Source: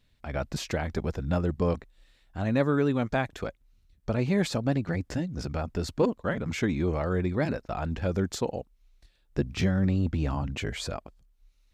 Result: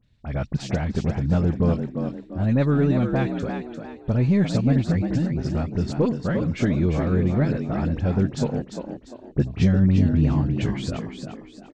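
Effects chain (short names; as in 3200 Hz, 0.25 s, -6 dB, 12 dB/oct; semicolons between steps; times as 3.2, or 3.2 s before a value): half-wave gain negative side -3 dB; LPF 7900 Hz 24 dB/oct; bell 130 Hz +11 dB 2.3 oct; dispersion highs, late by 44 ms, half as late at 2600 Hz; frequency-shifting echo 0.348 s, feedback 36%, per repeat +57 Hz, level -7 dB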